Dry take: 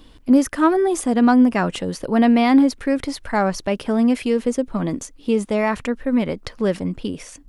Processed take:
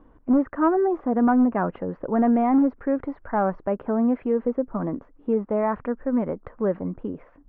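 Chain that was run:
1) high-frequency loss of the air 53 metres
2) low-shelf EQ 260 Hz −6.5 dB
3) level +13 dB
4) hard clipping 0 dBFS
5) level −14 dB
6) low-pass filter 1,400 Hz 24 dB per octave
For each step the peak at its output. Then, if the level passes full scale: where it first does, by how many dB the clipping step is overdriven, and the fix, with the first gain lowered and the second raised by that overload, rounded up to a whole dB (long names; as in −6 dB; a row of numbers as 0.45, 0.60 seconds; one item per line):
−5.0, −7.5, +5.5, 0.0, −14.0, −12.5 dBFS
step 3, 5.5 dB
step 3 +7 dB, step 5 −8 dB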